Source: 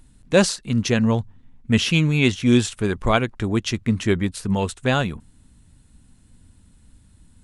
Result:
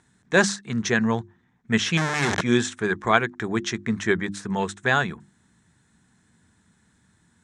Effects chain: 1.97–2.41 s: Schmitt trigger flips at -28.5 dBFS; cabinet simulation 190–7400 Hz, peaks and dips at 270 Hz -9 dB, 550 Hz -9 dB, 1.7 kHz +7 dB, 2.8 kHz -9 dB, 4.6 kHz -8 dB; hum notches 50/100/150/200/250/300/350 Hz; trim +1.5 dB

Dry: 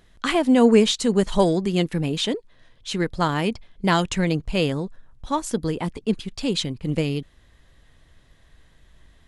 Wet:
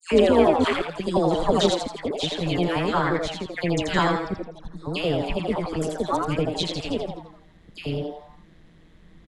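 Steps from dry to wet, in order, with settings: slices played last to first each 176 ms, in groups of 5; low-pass 3.5 kHz 6 dB/octave; peaking EQ 220 Hz -6 dB 0.67 oct; phase dispersion lows, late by 119 ms, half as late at 1.6 kHz; AM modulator 170 Hz, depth 45%; frequency-shifting echo 83 ms, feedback 41%, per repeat +150 Hz, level -4.5 dB; trim +2.5 dB

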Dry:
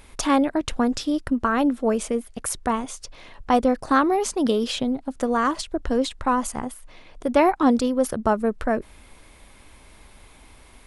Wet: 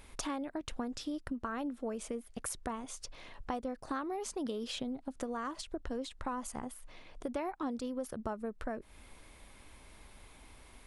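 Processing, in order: compression 4:1, threshold -30 dBFS, peak gain reduction 15 dB; trim -6.5 dB

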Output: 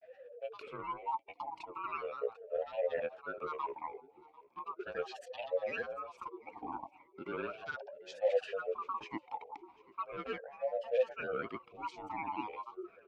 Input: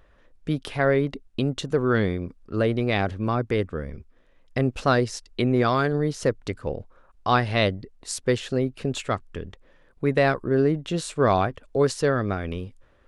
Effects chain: split-band scrambler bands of 500 Hz; reverse; compression 6:1, threshold -32 dBFS, peak gain reduction 16 dB; reverse; granulator, pitch spread up and down by 7 st; feedback delay 744 ms, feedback 25%, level -22 dB; talking filter e-u 0.37 Hz; trim +9.5 dB

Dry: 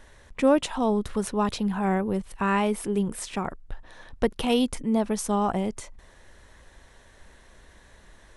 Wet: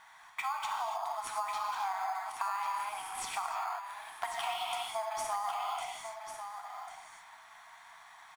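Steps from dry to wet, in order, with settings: brick-wall FIR high-pass 640 Hz; treble shelf 3.8 kHz -9 dB; comb 0.9 ms, depth 41%; gated-style reverb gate 320 ms flat, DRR -1 dB; in parallel at -10 dB: sample-rate reducer 5.7 kHz, jitter 0%; on the sum: compression 12:1, threshold -32 dBFS, peak gain reduction 15 dB; delay 1096 ms -8.5 dB

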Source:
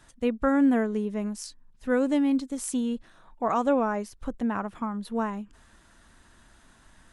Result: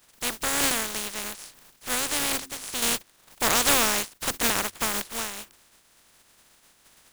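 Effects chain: spectral contrast reduction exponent 0.18; de-hum 88.73 Hz, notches 4; 2.82–5.02 s: waveshaping leveller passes 2; trim -3 dB

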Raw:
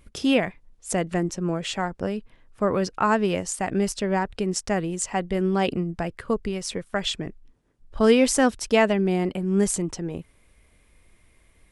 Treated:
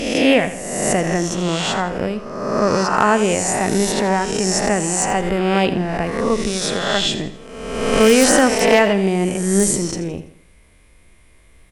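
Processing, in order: reverse spectral sustain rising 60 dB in 1.28 s; wavefolder -6.5 dBFS; feedback delay 83 ms, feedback 40%, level -13 dB; trim +4 dB

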